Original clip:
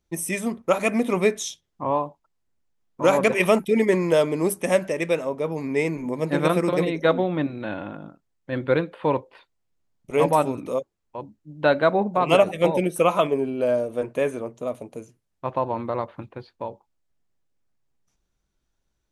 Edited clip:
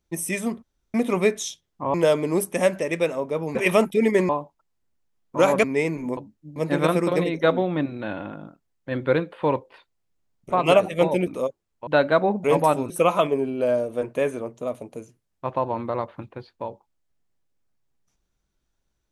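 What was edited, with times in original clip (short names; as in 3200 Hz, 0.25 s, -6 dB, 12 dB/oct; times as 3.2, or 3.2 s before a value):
0.63–0.94 room tone
1.94–3.29 swap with 4.03–5.64
10.13–10.59 swap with 12.15–12.9
11.19–11.58 move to 6.17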